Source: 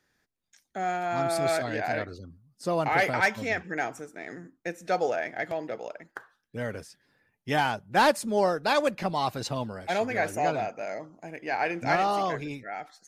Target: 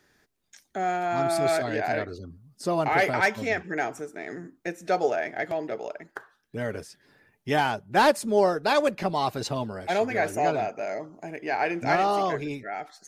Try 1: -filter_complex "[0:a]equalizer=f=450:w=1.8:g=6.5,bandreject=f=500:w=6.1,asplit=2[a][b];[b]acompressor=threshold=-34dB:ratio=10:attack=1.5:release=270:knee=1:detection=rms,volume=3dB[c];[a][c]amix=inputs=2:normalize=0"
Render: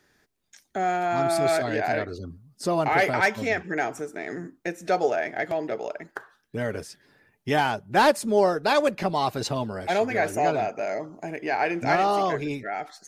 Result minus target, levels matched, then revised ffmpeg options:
compressor: peak gain reduction -10.5 dB
-filter_complex "[0:a]equalizer=f=450:w=1.8:g=6.5,bandreject=f=500:w=6.1,asplit=2[a][b];[b]acompressor=threshold=-45.5dB:ratio=10:attack=1.5:release=270:knee=1:detection=rms,volume=3dB[c];[a][c]amix=inputs=2:normalize=0"

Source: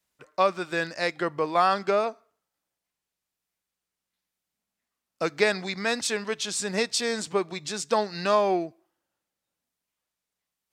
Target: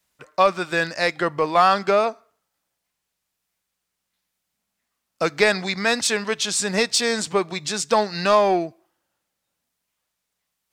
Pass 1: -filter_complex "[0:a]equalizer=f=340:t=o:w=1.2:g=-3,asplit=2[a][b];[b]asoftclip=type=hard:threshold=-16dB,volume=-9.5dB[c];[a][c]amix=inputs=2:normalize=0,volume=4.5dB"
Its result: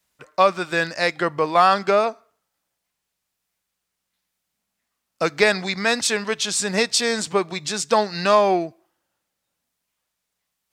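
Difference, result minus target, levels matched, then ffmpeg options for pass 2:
hard clip: distortion -9 dB
-filter_complex "[0:a]equalizer=f=340:t=o:w=1.2:g=-3,asplit=2[a][b];[b]asoftclip=type=hard:threshold=-22dB,volume=-9.5dB[c];[a][c]amix=inputs=2:normalize=0,volume=4.5dB"

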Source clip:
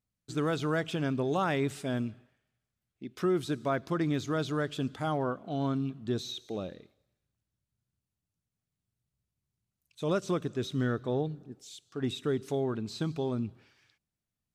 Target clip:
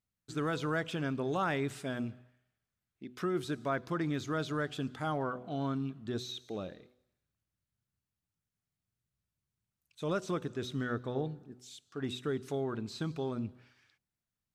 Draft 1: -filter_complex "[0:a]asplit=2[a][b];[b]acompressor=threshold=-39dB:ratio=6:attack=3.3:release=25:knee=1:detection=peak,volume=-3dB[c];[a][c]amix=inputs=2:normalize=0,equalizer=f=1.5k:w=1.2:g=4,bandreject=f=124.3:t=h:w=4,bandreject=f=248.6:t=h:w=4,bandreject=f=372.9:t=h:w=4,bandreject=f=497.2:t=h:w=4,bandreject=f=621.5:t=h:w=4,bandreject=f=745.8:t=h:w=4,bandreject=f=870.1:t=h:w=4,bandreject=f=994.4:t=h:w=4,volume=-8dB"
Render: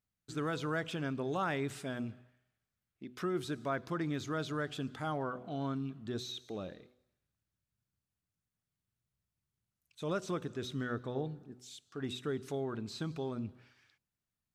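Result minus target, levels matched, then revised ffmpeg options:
compressor: peak gain reduction +8.5 dB
-filter_complex "[0:a]asplit=2[a][b];[b]acompressor=threshold=-28.5dB:ratio=6:attack=3.3:release=25:knee=1:detection=peak,volume=-3dB[c];[a][c]amix=inputs=2:normalize=0,equalizer=f=1.5k:w=1.2:g=4,bandreject=f=124.3:t=h:w=4,bandreject=f=248.6:t=h:w=4,bandreject=f=372.9:t=h:w=4,bandreject=f=497.2:t=h:w=4,bandreject=f=621.5:t=h:w=4,bandreject=f=745.8:t=h:w=4,bandreject=f=870.1:t=h:w=4,bandreject=f=994.4:t=h:w=4,volume=-8dB"

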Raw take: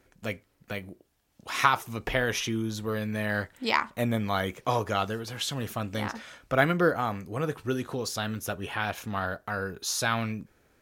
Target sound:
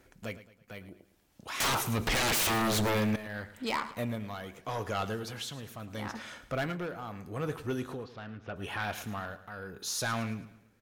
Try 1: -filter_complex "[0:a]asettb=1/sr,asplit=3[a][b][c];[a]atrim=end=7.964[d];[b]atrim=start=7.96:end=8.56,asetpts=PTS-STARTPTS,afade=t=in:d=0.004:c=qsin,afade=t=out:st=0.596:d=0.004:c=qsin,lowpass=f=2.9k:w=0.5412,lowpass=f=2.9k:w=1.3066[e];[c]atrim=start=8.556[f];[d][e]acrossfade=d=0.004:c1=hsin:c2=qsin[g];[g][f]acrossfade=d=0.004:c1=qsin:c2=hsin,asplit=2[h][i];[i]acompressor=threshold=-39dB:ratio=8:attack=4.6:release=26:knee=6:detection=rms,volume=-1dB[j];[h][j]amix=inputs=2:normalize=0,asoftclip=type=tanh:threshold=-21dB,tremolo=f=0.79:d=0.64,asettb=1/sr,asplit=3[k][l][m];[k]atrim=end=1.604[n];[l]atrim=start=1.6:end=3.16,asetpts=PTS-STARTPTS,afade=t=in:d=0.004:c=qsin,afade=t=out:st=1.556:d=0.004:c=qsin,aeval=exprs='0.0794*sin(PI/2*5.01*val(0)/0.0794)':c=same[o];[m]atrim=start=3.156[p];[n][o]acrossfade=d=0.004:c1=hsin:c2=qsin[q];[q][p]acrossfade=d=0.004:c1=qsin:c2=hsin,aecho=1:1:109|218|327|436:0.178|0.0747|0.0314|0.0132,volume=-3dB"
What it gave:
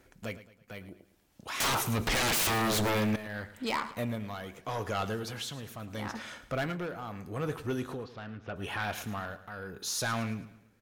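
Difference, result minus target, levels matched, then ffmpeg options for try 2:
compressor: peak gain reduction -6 dB
-filter_complex "[0:a]asettb=1/sr,asplit=3[a][b][c];[a]atrim=end=7.964[d];[b]atrim=start=7.96:end=8.56,asetpts=PTS-STARTPTS,afade=t=in:d=0.004:c=qsin,afade=t=out:st=0.596:d=0.004:c=qsin,lowpass=f=2.9k:w=0.5412,lowpass=f=2.9k:w=1.3066[e];[c]atrim=start=8.556[f];[d][e]acrossfade=d=0.004:c1=hsin:c2=qsin[g];[g][f]acrossfade=d=0.004:c1=qsin:c2=hsin,asplit=2[h][i];[i]acompressor=threshold=-46dB:ratio=8:attack=4.6:release=26:knee=6:detection=rms,volume=-1dB[j];[h][j]amix=inputs=2:normalize=0,asoftclip=type=tanh:threshold=-21dB,tremolo=f=0.79:d=0.64,asettb=1/sr,asplit=3[k][l][m];[k]atrim=end=1.604[n];[l]atrim=start=1.6:end=3.16,asetpts=PTS-STARTPTS,afade=t=in:d=0.004:c=qsin,afade=t=out:st=1.556:d=0.004:c=qsin,aeval=exprs='0.0794*sin(PI/2*5.01*val(0)/0.0794)':c=same[o];[m]atrim=start=3.156[p];[n][o]acrossfade=d=0.004:c1=hsin:c2=qsin[q];[q][p]acrossfade=d=0.004:c1=qsin:c2=hsin,aecho=1:1:109|218|327|436:0.178|0.0747|0.0314|0.0132,volume=-3dB"

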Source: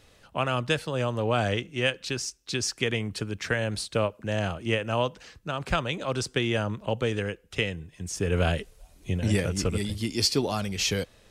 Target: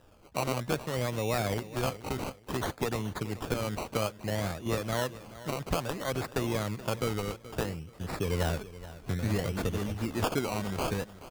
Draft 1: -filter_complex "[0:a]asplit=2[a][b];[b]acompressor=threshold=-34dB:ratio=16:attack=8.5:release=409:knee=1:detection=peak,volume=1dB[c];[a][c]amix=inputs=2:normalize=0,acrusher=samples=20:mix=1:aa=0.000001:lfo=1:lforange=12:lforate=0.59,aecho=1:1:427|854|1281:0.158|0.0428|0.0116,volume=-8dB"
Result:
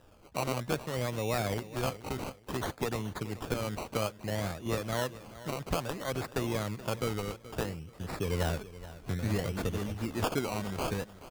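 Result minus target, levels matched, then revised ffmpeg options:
compressor: peak gain reduction +6 dB
-filter_complex "[0:a]asplit=2[a][b];[b]acompressor=threshold=-27.5dB:ratio=16:attack=8.5:release=409:knee=1:detection=peak,volume=1dB[c];[a][c]amix=inputs=2:normalize=0,acrusher=samples=20:mix=1:aa=0.000001:lfo=1:lforange=12:lforate=0.59,aecho=1:1:427|854|1281:0.158|0.0428|0.0116,volume=-8dB"

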